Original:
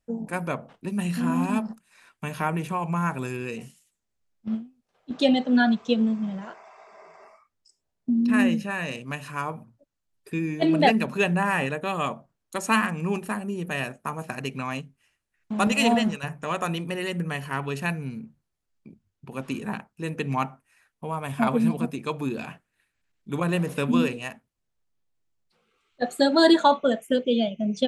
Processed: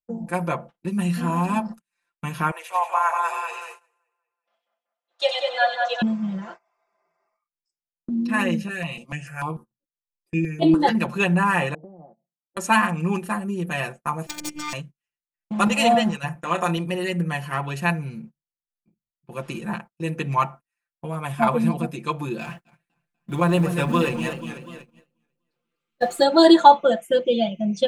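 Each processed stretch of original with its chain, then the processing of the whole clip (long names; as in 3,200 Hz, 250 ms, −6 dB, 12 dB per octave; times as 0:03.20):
0:02.51–0:06.02: Butterworth high-pass 570 Hz + echo with a time of its own for lows and highs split 2,200 Hz, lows 190 ms, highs 94 ms, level −3.5 dB
0:08.68–0:10.95: double-tracking delay 13 ms −8 dB + step-sequenced phaser 6.8 Hz 270–6,100 Hz
0:11.74–0:12.57: Chebyshev band-pass filter 150–840 Hz, order 5 + downward compressor 2.5 to 1, threshold −45 dBFS
0:14.26–0:14.73: phase distortion by the signal itself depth 0.72 ms + parametric band 6,800 Hz +9 dB 1 octave + phases set to zero 299 Hz
0:16.35–0:16.77: linear-phase brick-wall high-pass 150 Hz + double-tracking delay 30 ms −12 dB
0:22.41–0:26.24: mu-law and A-law mismatch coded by mu + feedback echo with a swinging delay time 244 ms, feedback 53%, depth 123 cents, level −9 dB
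whole clip: noise gate −41 dBFS, range −25 dB; comb filter 5.8 ms, depth 94%; dynamic equaliser 900 Hz, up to +5 dB, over −34 dBFS, Q 1.4; level −1 dB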